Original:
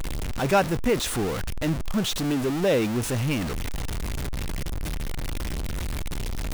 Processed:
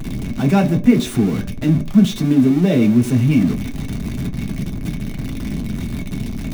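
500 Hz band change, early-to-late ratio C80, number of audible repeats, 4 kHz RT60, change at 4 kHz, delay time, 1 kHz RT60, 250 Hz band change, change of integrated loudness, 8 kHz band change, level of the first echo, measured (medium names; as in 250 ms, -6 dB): +1.5 dB, 20.0 dB, no echo, 0.20 s, 0.0 dB, no echo, 0.50 s, +13.5 dB, +9.0 dB, -2.0 dB, no echo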